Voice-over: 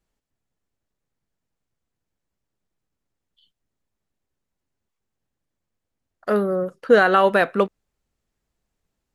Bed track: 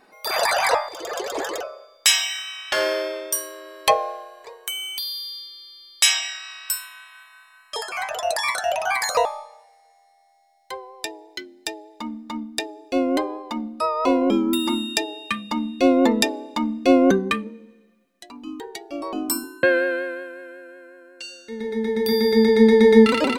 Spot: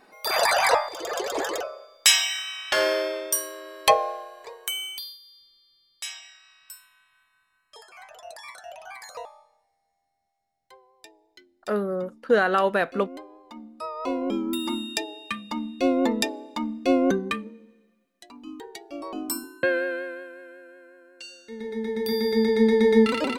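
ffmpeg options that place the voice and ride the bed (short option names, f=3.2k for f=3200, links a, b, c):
-filter_complex "[0:a]adelay=5400,volume=-5.5dB[a];[1:a]volume=12.5dB,afade=t=out:st=4.73:d=0.45:silence=0.125893,afade=t=in:st=13.29:d=1.44:silence=0.223872[b];[a][b]amix=inputs=2:normalize=0"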